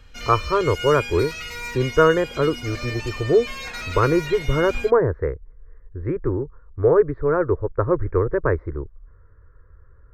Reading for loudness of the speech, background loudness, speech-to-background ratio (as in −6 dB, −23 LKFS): −21.5 LKFS, −31.5 LKFS, 10.0 dB